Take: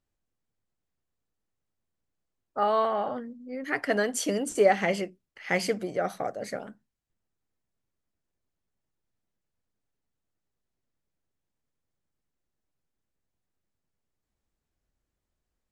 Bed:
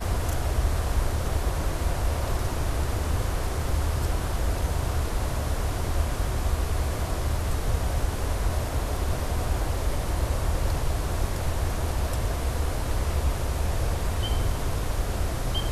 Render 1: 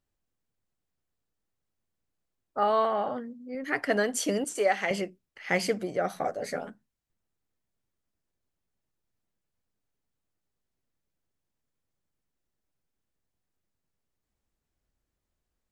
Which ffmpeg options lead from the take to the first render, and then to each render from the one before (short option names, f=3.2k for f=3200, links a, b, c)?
-filter_complex "[0:a]asettb=1/sr,asplit=3[a][b][c];[a]atrim=end=2.704[d];[b]atrim=start=2.7:end=3.55,asetpts=PTS-STARTPTS,afade=t=in:d=0.004:c=qsin,afade=t=out:st=0.846:d=0.004:c=qsin,highpass=57[e];[c]atrim=start=3.546[f];[d][e]acrossfade=d=0.004:c1=hsin:c2=qsin[g];[g][f]acrossfade=d=0.004:c1=qsin:c2=hsin,asettb=1/sr,asplit=3[h][i][j];[h]atrim=end=4.444[k];[i]atrim=start=4.44:end=4.91,asetpts=PTS-STARTPTS,afade=t=in:d=0.004:c=qsin,afade=t=out:st=0.466:d=0.004:c=qsin,highpass=f=760:p=1[l];[j]atrim=start=4.906[m];[k][l]acrossfade=d=0.004:c1=hsin:c2=qsin[n];[n][m]acrossfade=d=0.004:c1=qsin:c2=hsin,asettb=1/sr,asplit=3[o][p][q];[o]atrim=end=6.154[r];[p]atrim=start=6.15:end=6.7,asetpts=PTS-STARTPTS,afade=t=in:d=0.004:c=qsin,afade=t=out:st=0.546:d=0.004:c=qsin,asplit=2[s][t];[t]adelay=12,volume=-3dB[u];[s][u]amix=inputs=2:normalize=0,atrim=end_sample=24255[v];[q]atrim=start=6.696[w];[r][v]acrossfade=d=0.004:c1=hsin:c2=qsin[x];[x][w]acrossfade=d=0.004:c1=qsin:c2=hsin"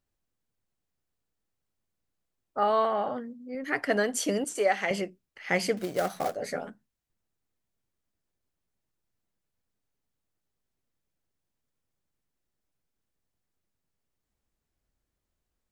-filter_complex "[0:a]asettb=1/sr,asplit=3[a][b][c];[a]atrim=end=5.774[d];[b]atrim=start=5.77:end=6.35,asetpts=PTS-STARTPTS,afade=t=in:d=0.004:c=qsin,afade=t=out:st=0.576:d=0.004:c=qsin,acrusher=bits=3:mode=log:mix=0:aa=0.000001[e];[c]atrim=start=6.346[f];[d][e]acrossfade=d=0.004:c1=hsin:c2=qsin[g];[g][f]acrossfade=d=0.004:c1=qsin:c2=hsin"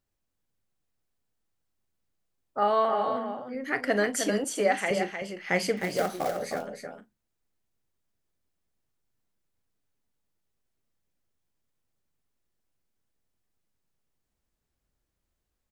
-filter_complex "[0:a]asplit=2[a][b];[b]adelay=39,volume=-13.5dB[c];[a][c]amix=inputs=2:normalize=0,asplit=2[d][e];[e]aecho=0:1:309:0.447[f];[d][f]amix=inputs=2:normalize=0"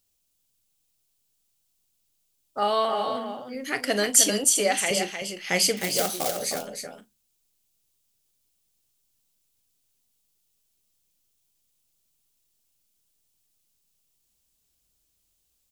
-af "aexciter=amount=4.4:drive=4.5:freq=2.6k"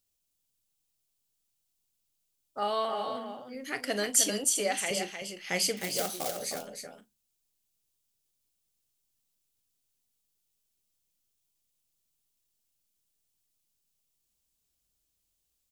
-af "volume=-6.5dB"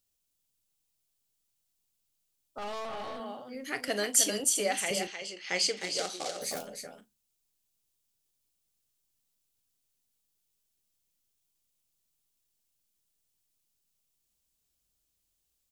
-filter_complex "[0:a]asettb=1/sr,asplit=3[a][b][c];[a]atrim=end=2.584[d];[b]atrim=start=2.58:end=3.2,asetpts=PTS-STARTPTS,afade=t=in:d=0.004:c=qsin,afade=t=out:st=0.616:d=0.004:c=qsin,aeval=exprs='(tanh(56.2*val(0)+0.65)-tanh(0.65))/56.2':c=same[e];[c]atrim=start=3.196[f];[d][e]acrossfade=d=0.004:c1=hsin:c2=qsin[g];[g][f]acrossfade=d=0.004:c1=qsin:c2=hsin,asettb=1/sr,asplit=3[h][i][j];[h]atrim=end=3.884[k];[i]atrim=start=3.88:end=4.4,asetpts=PTS-STARTPTS,afade=t=in:d=0.004:c=qsin,afade=t=out:st=0.516:d=0.004:c=qsin,highpass=200[l];[j]atrim=start=4.396[m];[k][l]acrossfade=d=0.004:c1=hsin:c2=qsin[n];[n][m]acrossfade=d=0.004:c1=qsin:c2=hsin,asettb=1/sr,asplit=3[o][p][q];[o]atrim=end=5.074[r];[p]atrim=start=5.07:end=6.42,asetpts=PTS-STARTPTS,afade=t=in:d=0.004:c=qsin,afade=t=out:st=1.346:d=0.004:c=qsin,highpass=220,equalizer=f=220:t=q:w=4:g=-9,equalizer=f=660:t=q:w=4:g=-4,equalizer=f=4.3k:t=q:w=4:g=4,lowpass=f=7.9k:w=0.5412,lowpass=f=7.9k:w=1.3066[s];[q]atrim=start=6.416[t];[r][s]acrossfade=d=0.004:c1=hsin:c2=qsin[u];[u][t]acrossfade=d=0.004:c1=qsin:c2=hsin"